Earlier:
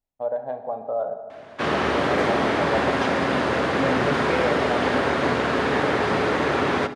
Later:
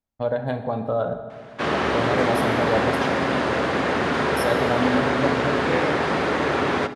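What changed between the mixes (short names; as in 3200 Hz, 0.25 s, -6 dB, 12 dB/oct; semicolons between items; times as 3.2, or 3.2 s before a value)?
first voice: remove band-pass 690 Hz, Q 2.1; second voice: entry +1.40 s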